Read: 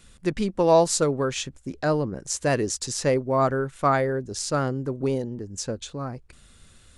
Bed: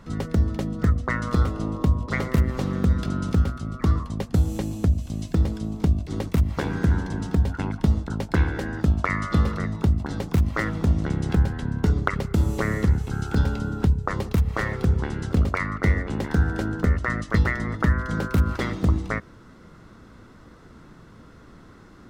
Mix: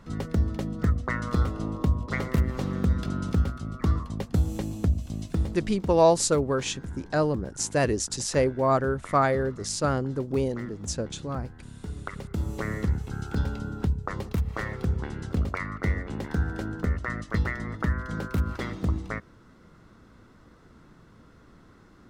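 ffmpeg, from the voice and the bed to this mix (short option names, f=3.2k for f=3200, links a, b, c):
-filter_complex "[0:a]adelay=5300,volume=-1dB[a];[1:a]volume=8dB,afade=t=out:st=5.15:d=0.92:silence=0.199526,afade=t=in:st=11.83:d=0.88:silence=0.266073[b];[a][b]amix=inputs=2:normalize=0"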